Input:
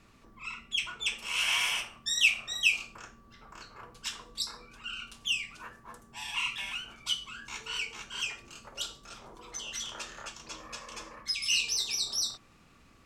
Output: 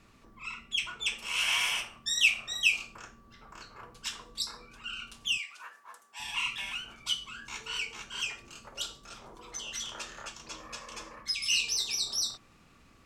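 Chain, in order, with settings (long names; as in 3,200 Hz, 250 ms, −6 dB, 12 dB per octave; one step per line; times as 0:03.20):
0:05.38–0:06.20: high-pass filter 830 Hz 12 dB per octave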